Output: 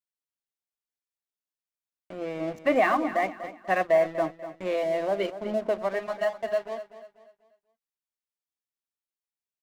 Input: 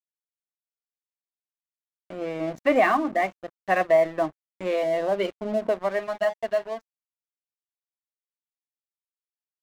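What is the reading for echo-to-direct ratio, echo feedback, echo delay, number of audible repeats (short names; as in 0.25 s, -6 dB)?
-12.5 dB, 36%, 0.244 s, 3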